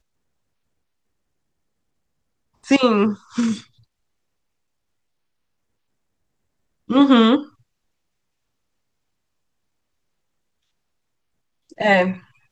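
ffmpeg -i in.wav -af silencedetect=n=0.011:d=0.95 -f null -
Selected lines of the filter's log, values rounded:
silence_start: 0.00
silence_end: 2.64 | silence_duration: 2.64
silence_start: 3.64
silence_end: 6.89 | silence_duration: 3.26
silence_start: 7.48
silence_end: 11.72 | silence_duration: 4.24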